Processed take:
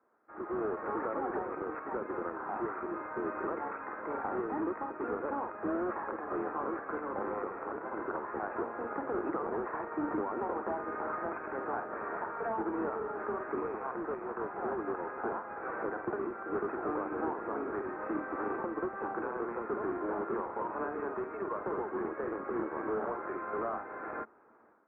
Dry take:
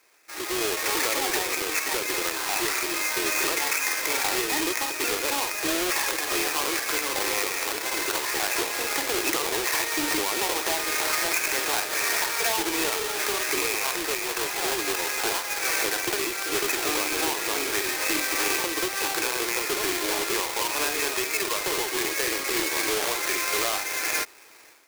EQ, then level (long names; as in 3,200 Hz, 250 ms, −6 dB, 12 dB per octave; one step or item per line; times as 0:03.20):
high-pass filter 49 Hz
elliptic low-pass filter 1,400 Hz, stop band 80 dB
parametric band 220 Hz +12 dB 0.42 octaves
−5.0 dB